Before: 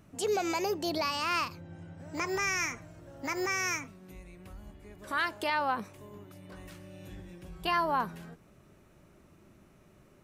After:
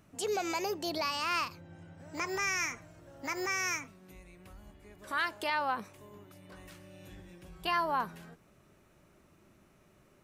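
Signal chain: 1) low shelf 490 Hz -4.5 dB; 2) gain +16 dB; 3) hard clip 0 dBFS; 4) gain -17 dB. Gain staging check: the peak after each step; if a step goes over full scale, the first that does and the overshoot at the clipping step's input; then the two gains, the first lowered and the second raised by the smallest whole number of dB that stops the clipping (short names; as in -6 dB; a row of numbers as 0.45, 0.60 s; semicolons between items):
-18.0, -2.0, -2.0, -19.0 dBFS; no overload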